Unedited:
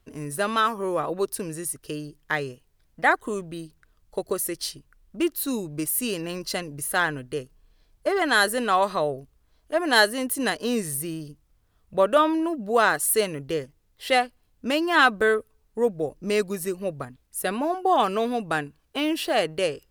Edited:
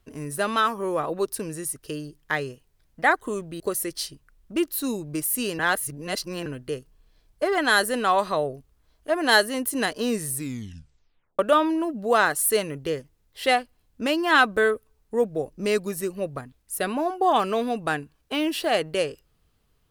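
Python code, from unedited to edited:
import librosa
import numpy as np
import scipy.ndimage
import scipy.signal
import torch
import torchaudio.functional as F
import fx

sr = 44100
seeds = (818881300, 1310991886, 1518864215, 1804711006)

y = fx.edit(x, sr, fx.cut(start_s=3.6, length_s=0.64),
    fx.reverse_span(start_s=6.23, length_s=0.87),
    fx.tape_stop(start_s=10.93, length_s=1.1), tone=tone)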